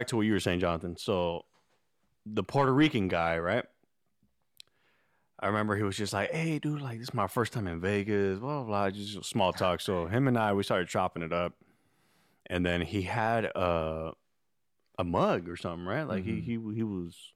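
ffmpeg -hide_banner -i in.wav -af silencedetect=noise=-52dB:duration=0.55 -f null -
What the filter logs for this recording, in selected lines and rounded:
silence_start: 1.41
silence_end: 2.26 | silence_duration: 0.85
silence_start: 3.67
silence_end: 4.57 | silence_duration: 0.91
silence_start: 4.68
silence_end: 5.39 | silence_duration: 0.71
silence_start: 11.62
silence_end: 12.46 | silence_duration: 0.84
silence_start: 14.14
silence_end: 14.95 | silence_duration: 0.81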